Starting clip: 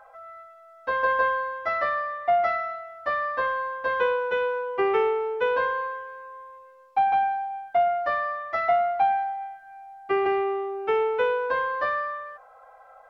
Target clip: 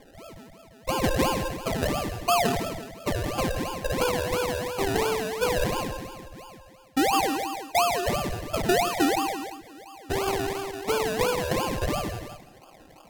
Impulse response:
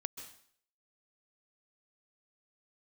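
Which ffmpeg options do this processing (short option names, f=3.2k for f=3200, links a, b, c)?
-filter_complex "[0:a]highpass=f=410:w=0.5412,highpass=f=410:w=1.3066,acrusher=samples=32:mix=1:aa=0.000001:lfo=1:lforange=19.2:lforate=2.9[a];[1:a]atrim=start_sample=2205,atrim=end_sample=6174,asetrate=34839,aresample=44100[b];[a][b]afir=irnorm=-1:irlink=0"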